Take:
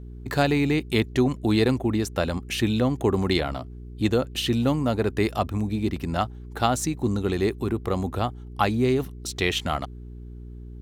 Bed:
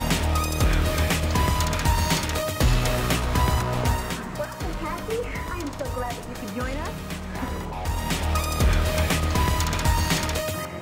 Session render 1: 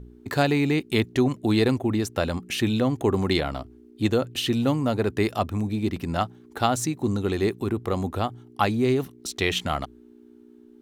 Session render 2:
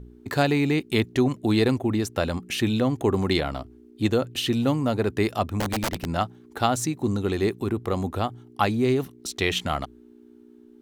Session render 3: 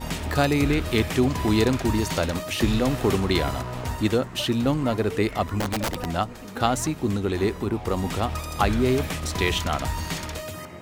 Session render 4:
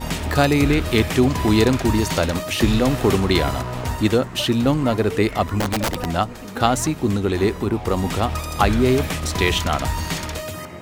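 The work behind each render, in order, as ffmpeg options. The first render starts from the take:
-af "bandreject=f=60:t=h:w=4,bandreject=f=120:t=h:w=4,bandreject=f=180:t=h:w=4"
-filter_complex "[0:a]asettb=1/sr,asplit=3[a][b][c];[a]atrim=end=5.604[d];[b]atrim=start=5.6:end=6.07,asetpts=PTS-STARTPTS,afade=t=in:d=0.004:c=qsin,afade=t=out:st=0.466:d=0.004:c=qsin,aeval=exprs='(mod(11.2*val(0)+1,2)-1)/11.2':c=same[e];[c]atrim=start=6.066[f];[d][e]acrossfade=d=0.004:c1=hsin:c2=qsin[g];[g][f]acrossfade=d=0.004:c1=qsin:c2=hsin"
-filter_complex "[1:a]volume=-7dB[a];[0:a][a]amix=inputs=2:normalize=0"
-af "volume=4.5dB"

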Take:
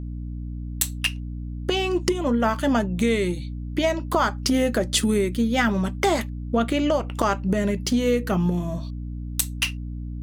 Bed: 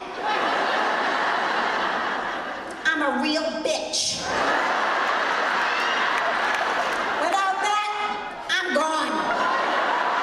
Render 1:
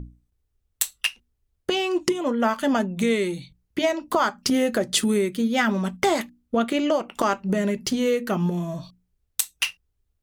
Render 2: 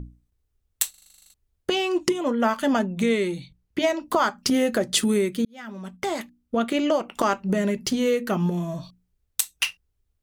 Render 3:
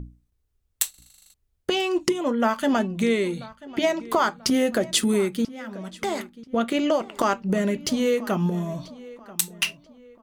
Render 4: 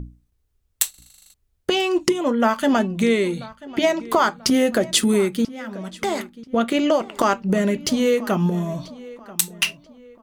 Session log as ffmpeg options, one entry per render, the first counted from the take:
-af "bandreject=f=60:t=h:w=6,bandreject=f=120:t=h:w=6,bandreject=f=180:t=h:w=6,bandreject=f=240:t=h:w=6,bandreject=f=300:t=h:w=6"
-filter_complex "[0:a]asettb=1/sr,asplit=3[a][b][c];[a]atrim=end=2.794[d];[b]atrim=start=2.79:end=3.82,asetpts=PTS-STARTPTS,afade=t=in:d=0.004:c=qsin,afade=t=out:st=1.026:d=0.004:c=qsin,highshelf=f=6.8k:g=-5.5[e];[c]atrim=start=3.816[f];[d][e]acrossfade=d=0.004:c1=hsin:c2=qsin[g];[g][f]acrossfade=d=0.004:c1=qsin:c2=hsin,asplit=13[h][i][j][k][l][m][n][o][p][q][r][s][t];[h]atrim=end=0.942[u];[i]atrim=start=0.898:end=0.942[v];[j]atrim=start=0.898:end=0.942[w];[k]atrim=start=0.898:end=0.942[x];[l]atrim=start=0.898:end=0.942[y];[m]atrim=start=0.898:end=0.942[z];[n]atrim=start=0.898:end=0.942[aa];[o]atrim=start=0.898:end=0.942[ab];[p]atrim=start=0.898:end=0.942[ac];[q]atrim=start=0.898:end=0.942[ad];[r]atrim=start=0.898:end=0.942[ae];[s]atrim=start=1.338:end=5.45,asetpts=PTS-STARTPTS,afade=t=out:st=4.108:d=0.004:c=hsin[af];[t]atrim=start=5.45,asetpts=PTS-STARTPTS,afade=t=in:d=1.35[ag];[u][v]acrossfade=d=0.004:c1=hsin:c2=hsin[ah];[ah][w]acrossfade=d=0.004:c1=hsin:c2=hsin[ai];[ai][x]acrossfade=d=0.004:c1=hsin:c2=hsin[aj];[aj][y]acrossfade=d=0.004:c1=hsin:c2=hsin[ak];[ak][z]acrossfade=d=0.004:c1=hsin:c2=hsin[al];[al][aa]acrossfade=d=0.004:c1=hsin:c2=hsin[am];[am][ab]acrossfade=d=0.004:c1=hsin:c2=hsin[an];[an][ac]acrossfade=d=0.004:c1=hsin:c2=hsin[ao];[ao][ad]acrossfade=d=0.004:c1=hsin:c2=hsin[ap];[ap][ae]acrossfade=d=0.004:c1=hsin:c2=hsin[aq];[af][ag]concat=n=2:v=0:a=1[ar];[aq][ar]acrossfade=d=0.004:c1=hsin:c2=hsin"
-filter_complex "[0:a]asplit=2[a][b];[b]adelay=987,lowpass=f=3.7k:p=1,volume=-19dB,asplit=2[c][d];[d]adelay=987,lowpass=f=3.7k:p=1,volume=0.39,asplit=2[e][f];[f]adelay=987,lowpass=f=3.7k:p=1,volume=0.39[g];[a][c][e][g]amix=inputs=4:normalize=0"
-af "volume=3.5dB"

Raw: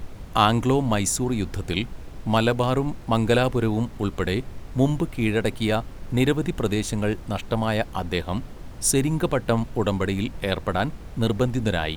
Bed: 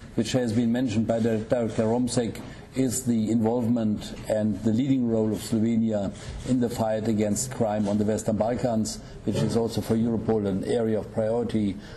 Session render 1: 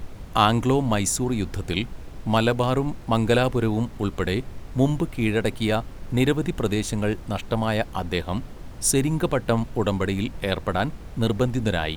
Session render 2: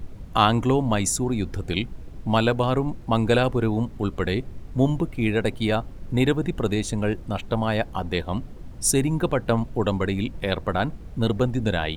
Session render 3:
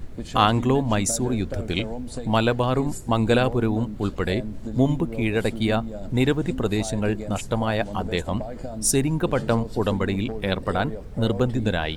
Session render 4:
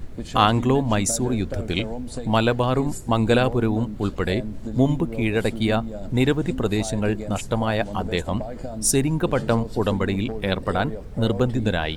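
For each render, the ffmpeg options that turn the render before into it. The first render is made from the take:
-af anull
-af "afftdn=nr=8:nf=-40"
-filter_complex "[1:a]volume=-9.5dB[a];[0:a][a]amix=inputs=2:normalize=0"
-af "volume=1dB"

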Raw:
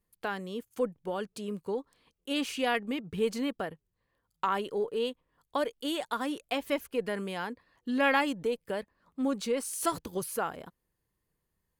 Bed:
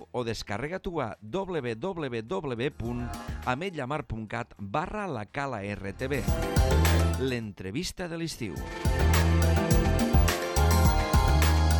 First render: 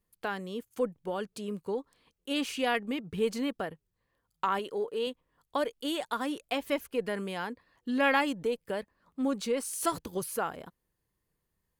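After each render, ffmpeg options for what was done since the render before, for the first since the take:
-filter_complex "[0:a]asettb=1/sr,asplit=3[a][b][c];[a]atrim=end=4.594[d];[b]atrim=start=4.59:end=5.07,asetpts=PTS-STARTPTS,afade=t=in:d=0.004:c=qsin,afade=t=out:st=0.476:d=0.004:c=qsin,lowshelf=f=180:g=-9.5[e];[c]atrim=start=5.066[f];[d][e]acrossfade=d=0.004:c1=hsin:c2=qsin[g];[g][f]acrossfade=d=0.004:c1=qsin:c2=hsin"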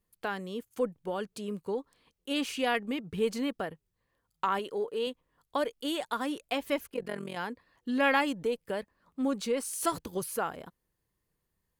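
-filter_complex "[0:a]asplit=3[a][b][c];[a]afade=t=out:st=6.86:d=0.02[d];[b]tremolo=f=44:d=0.857,afade=t=in:st=6.86:d=0.02,afade=t=out:st=7.35:d=0.02[e];[c]afade=t=in:st=7.35:d=0.02[f];[d][e][f]amix=inputs=3:normalize=0"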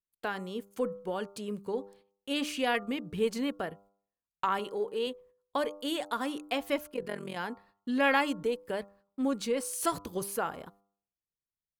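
-af "agate=range=-23dB:threshold=-59dB:ratio=16:detection=peak,bandreject=f=99.6:t=h:w=4,bandreject=f=199.2:t=h:w=4,bandreject=f=298.8:t=h:w=4,bandreject=f=398.4:t=h:w=4,bandreject=f=498:t=h:w=4,bandreject=f=597.6:t=h:w=4,bandreject=f=697.2:t=h:w=4,bandreject=f=796.8:t=h:w=4,bandreject=f=896.4:t=h:w=4,bandreject=f=996:t=h:w=4,bandreject=f=1.0956k:t=h:w=4,bandreject=f=1.1952k:t=h:w=4,bandreject=f=1.2948k:t=h:w=4,bandreject=f=1.3944k:t=h:w=4"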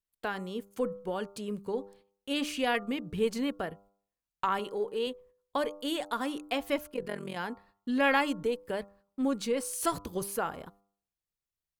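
-af "lowshelf=f=71:g=9.5"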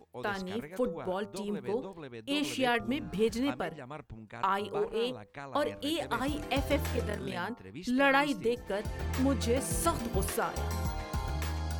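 -filter_complex "[1:a]volume=-12dB[a];[0:a][a]amix=inputs=2:normalize=0"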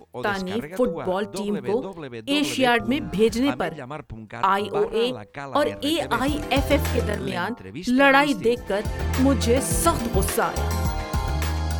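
-af "volume=9.5dB"

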